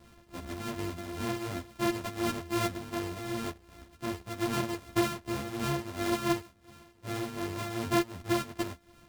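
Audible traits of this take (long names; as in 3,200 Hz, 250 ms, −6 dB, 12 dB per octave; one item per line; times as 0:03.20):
a buzz of ramps at a fixed pitch in blocks of 128 samples
tremolo triangle 2.7 Hz, depth 65%
a shimmering, thickened sound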